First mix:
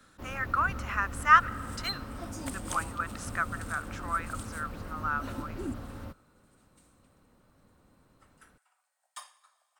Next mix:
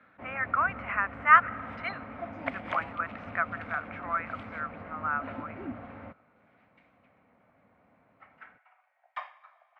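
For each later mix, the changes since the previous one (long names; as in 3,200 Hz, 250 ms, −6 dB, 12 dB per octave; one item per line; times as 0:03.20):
second sound +8.0 dB
master: add loudspeaker in its box 130–2,400 Hz, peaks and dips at 150 Hz −4 dB, 350 Hz −7 dB, 690 Hz +8 dB, 2,200 Hz +9 dB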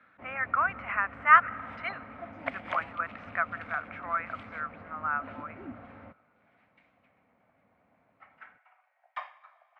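first sound −4.5 dB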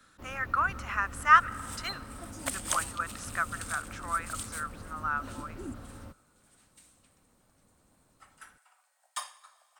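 master: remove loudspeaker in its box 130–2,400 Hz, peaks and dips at 150 Hz −4 dB, 350 Hz −7 dB, 690 Hz +8 dB, 2,200 Hz +9 dB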